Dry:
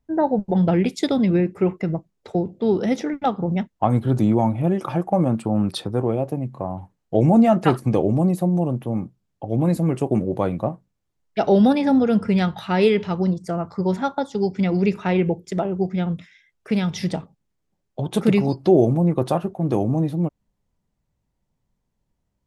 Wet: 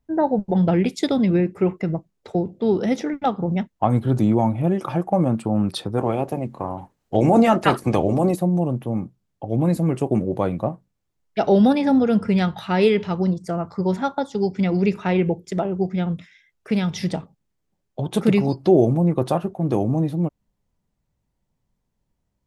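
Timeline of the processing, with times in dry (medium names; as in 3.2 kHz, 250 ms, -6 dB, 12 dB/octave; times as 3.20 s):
5.97–8.35 s: spectral peaks clipped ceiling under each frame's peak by 13 dB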